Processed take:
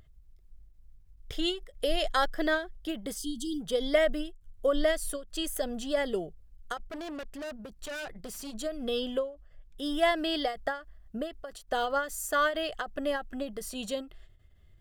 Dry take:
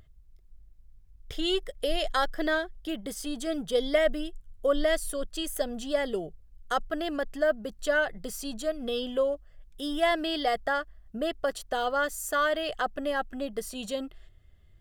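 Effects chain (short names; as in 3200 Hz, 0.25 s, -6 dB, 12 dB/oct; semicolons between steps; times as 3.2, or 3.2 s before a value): 3.17–3.6 spectral delete 430–2800 Hz; 6.77–8.55 tube stage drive 36 dB, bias 0.45; 9.19–9.86 high shelf 5200 Hz -6 dB; ending taper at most 150 dB/s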